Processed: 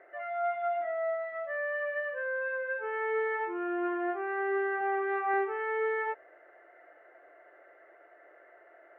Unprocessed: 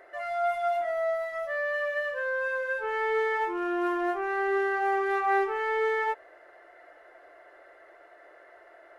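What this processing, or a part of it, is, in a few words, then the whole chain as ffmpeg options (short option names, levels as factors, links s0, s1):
bass cabinet: -filter_complex "[0:a]highpass=f=83:w=0.5412,highpass=f=83:w=1.3066,equalizer=f=100:t=q:w=4:g=-4,equalizer=f=150:t=q:w=4:g=-6,equalizer=f=1000:t=q:w=4:g=-6,lowpass=f=2400:w=0.5412,lowpass=f=2400:w=1.3066,asettb=1/sr,asplit=3[s0][s1][s2];[s0]atrim=end=4.814[s3];[s1]atrim=start=4.81:end=5.34,asetpts=PTS-STARTPTS,afade=t=in:d=0.004:c=qsin,afade=t=out:st=0.526:d=0.004:c=qsin,highpass=130[s4];[s2]atrim=start=5.336[s5];[s3][s4]acrossfade=d=0.004:c1=hsin:c2=qsin[s6];[s6][s5]acrossfade=d=0.004:c1=qsin:c2=hsin,volume=0.708"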